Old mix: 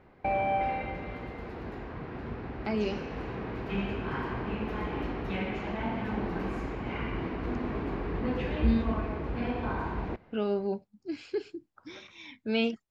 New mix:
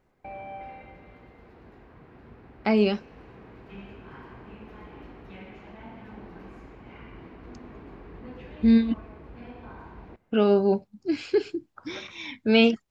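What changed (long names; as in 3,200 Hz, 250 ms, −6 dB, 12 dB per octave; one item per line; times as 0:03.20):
speech +9.5 dB
background −11.5 dB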